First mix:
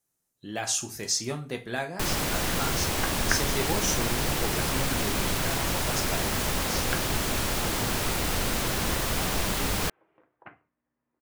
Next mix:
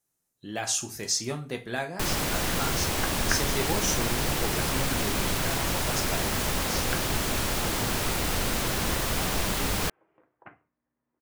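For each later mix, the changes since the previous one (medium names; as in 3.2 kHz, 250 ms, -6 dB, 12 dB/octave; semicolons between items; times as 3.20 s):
second sound: add distance through air 200 m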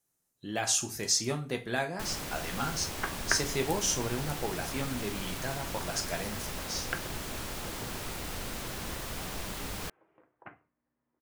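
first sound -10.5 dB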